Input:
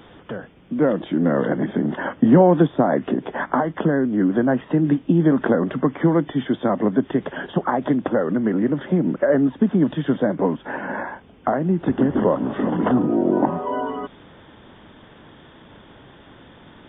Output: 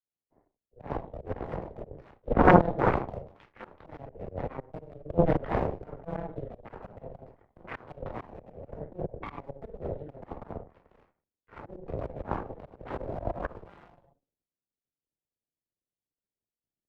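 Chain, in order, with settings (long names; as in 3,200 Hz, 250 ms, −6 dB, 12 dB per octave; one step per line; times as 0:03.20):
adaptive Wiener filter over 41 samples
rectangular room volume 550 cubic metres, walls furnished, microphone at 3.9 metres
harmonic generator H 3 −9 dB, 4 −9 dB, 5 −37 dB, 6 −25 dB, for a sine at 7 dBFS
volume swells 181 ms
multiband upward and downward expander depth 40%
level −7.5 dB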